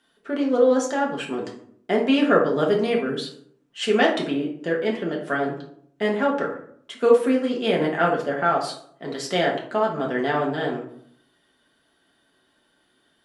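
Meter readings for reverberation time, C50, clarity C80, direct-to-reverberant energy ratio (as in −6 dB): 0.65 s, 6.5 dB, 11.0 dB, −2.0 dB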